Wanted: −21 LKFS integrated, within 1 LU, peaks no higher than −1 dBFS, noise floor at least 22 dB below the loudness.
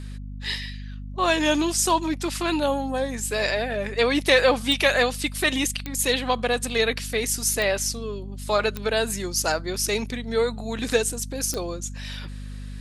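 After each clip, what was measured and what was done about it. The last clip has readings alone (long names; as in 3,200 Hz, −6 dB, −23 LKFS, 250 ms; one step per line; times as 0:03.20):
number of clicks 5; mains hum 50 Hz; hum harmonics up to 250 Hz; level of the hum −33 dBFS; integrated loudness −23.5 LKFS; sample peak −5.0 dBFS; target loudness −21.0 LKFS
→ click removal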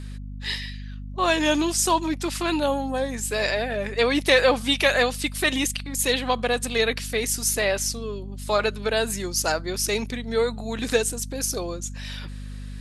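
number of clicks 0; mains hum 50 Hz; hum harmonics up to 250 Hz; level of the hum −33 dBFS
→ mains-hum notches 50/100/150/200/250 Hz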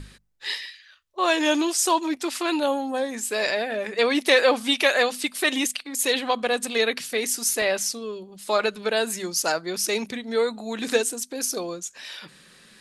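mains hum none found; integrated loudness −24.0 LKFS; sample peak −5.0 dBFS; target loudness −21.0 LKFS
→ level +3 dB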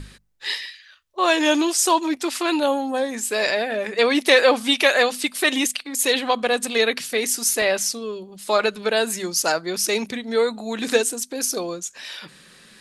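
integrated loudness −21.0 LKFS; sample peak −2.0 dBFS; background noise floor −50 dBFS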